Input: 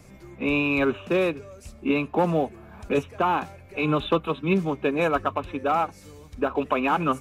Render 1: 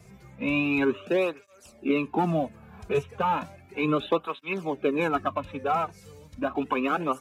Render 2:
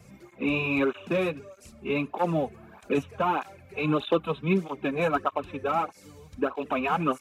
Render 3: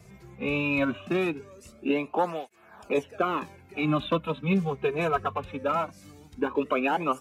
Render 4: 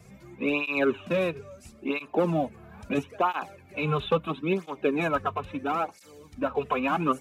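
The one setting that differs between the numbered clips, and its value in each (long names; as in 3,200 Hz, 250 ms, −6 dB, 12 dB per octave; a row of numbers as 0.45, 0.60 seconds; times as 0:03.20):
through-zero flanger with one copy inverted, nulls at: 0.34, 1.6, 0.2, 0.75 Hertz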